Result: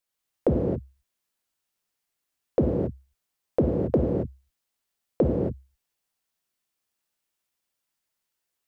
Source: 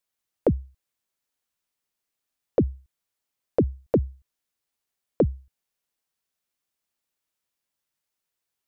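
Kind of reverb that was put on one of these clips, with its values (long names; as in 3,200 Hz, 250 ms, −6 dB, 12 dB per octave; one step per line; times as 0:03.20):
reverb whose tail is shaped and stops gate 300 ms flat, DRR −1.5 dB
level −2 dB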